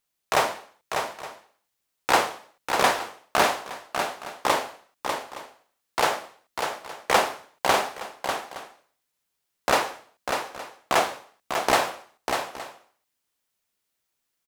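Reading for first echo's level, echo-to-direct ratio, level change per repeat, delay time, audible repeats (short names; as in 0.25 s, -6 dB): -6.0 dB, -5.5 dB, no steady repeat, 0.596 s, 2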